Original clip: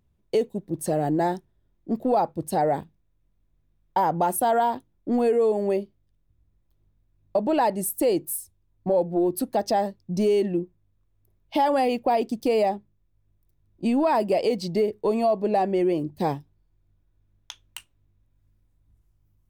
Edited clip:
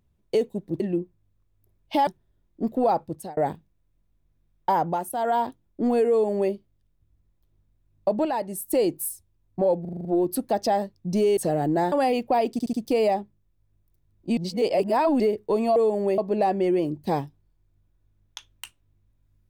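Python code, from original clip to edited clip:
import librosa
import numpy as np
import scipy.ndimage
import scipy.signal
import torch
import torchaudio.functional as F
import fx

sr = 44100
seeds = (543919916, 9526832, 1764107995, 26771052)

y = fx.edit(x, sr, fx.swap(start_s=0.8, length_s=0.55, other_s=10.41, other_length_s=1.27),
    fx.fade_out_span(start_s=2.3, length_s=0.35),
    fx.fade_down_up(start_s=4.07, length_s=0.61, db=-9.5, fade_s=0.3),
    fx.duplicate(start_s=5.38, length_s=0.42, to_s=15.31),
    fx.clip_gain(start_s=7.53, length_s=0.43, db=-5.5),
    fx.stutter(start_s=9.09, slice_s=0.04, count=7),
    fx.stutter(start_s=12.28, slice_s=0.07, count=4),
    fx.reverse_span(start_s=13.92, length_s=0.83), tone=tone)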